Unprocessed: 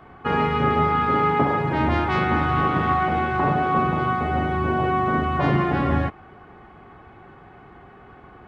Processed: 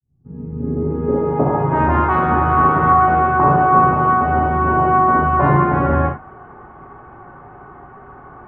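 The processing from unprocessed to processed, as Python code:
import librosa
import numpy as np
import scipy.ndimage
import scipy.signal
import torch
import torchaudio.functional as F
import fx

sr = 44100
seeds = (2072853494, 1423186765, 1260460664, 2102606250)

y = fx.fade_in_head(x, sr, length_s=1.11)
y = fx.filter_sweep_lowpass(y, sr, from_hz=120.0, to_hz=1200.0, start_s=0.02, end_s=1.81, q=1.8)
y = fx.rev_gated(y, sr, seeds[0], gate_ms=100, shape='flat', drr_db=2.0)
y = y * librosa.db_to_amplitude(2.5)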